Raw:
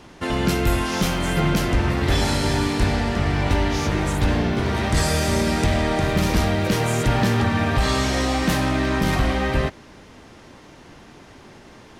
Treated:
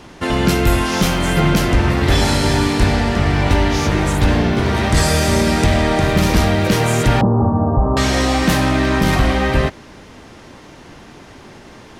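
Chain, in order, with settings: 7.21–7.97 steep low-pass 1100 Hz 48 dB/oct; gain +5.5 dB

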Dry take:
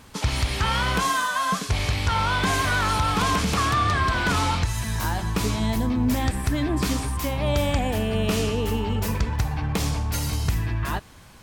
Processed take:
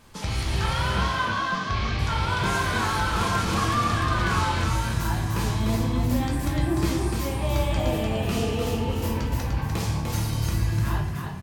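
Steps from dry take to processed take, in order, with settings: 0.96–1.99 LPF 5200 Hz 24 dB/oct; frequency-shifting echo 0.298 s, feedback 36%, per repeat +36 Hz, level -4 dB; shoebox room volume 95 m³, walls mixed, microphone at 0.8 m; gain -7 dB

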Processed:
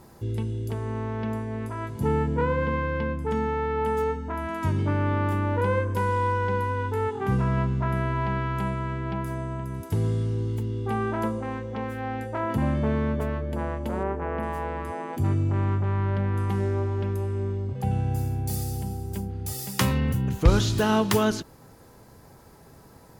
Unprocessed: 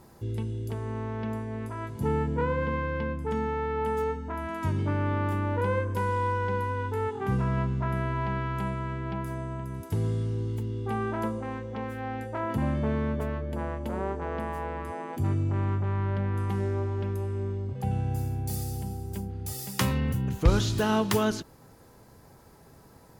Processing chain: 14.03–14.43 band shelf 5600 Hz -10.5 dB; gain +3 dB

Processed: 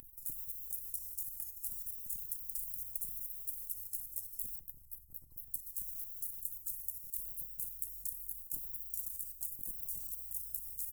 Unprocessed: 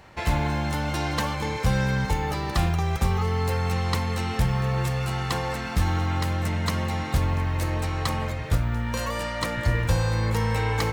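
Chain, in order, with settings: 4.59–5.54 formant sharpening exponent 3; inverse Chebyshev band-stop 100–3600 Hz, stop band 80 dB; 2.42–3.05 bell 110 Hz +9.5 dB 1.5 oct; level quantiser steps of 9 dB; echo 0.983 s -18.5 dB; spectral compressor 4:1; gain +17.5 dB

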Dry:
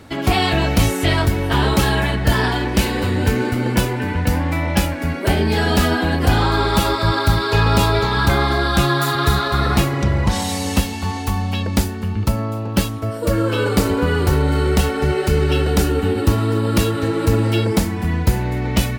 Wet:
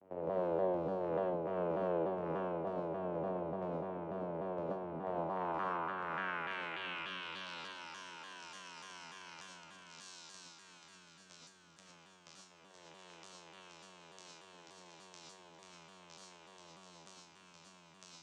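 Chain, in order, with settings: band shelf 3200 Hz -13 dB 1 oct; resonator 650 Hz, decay 0.45 s, mix 80%; vocoder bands 4, saw 85.2 Hz; soft clip -28 dBFS, distortion -12 dB; band-pass sweep 560 Hz -> 5800 Hz, 5.06–8.26; speed mistake 24 fps film run at 25 fps; on a send: echo with dull and thin repeats by turns 0.34 s, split 850 Hz, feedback 82%, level -11 dB; on the sum: non-linear reverb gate 0.14 s rising, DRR -2.5 dB; shaped vibrato saw down 3.4 Hz, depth 160 cents; gain +4 dB

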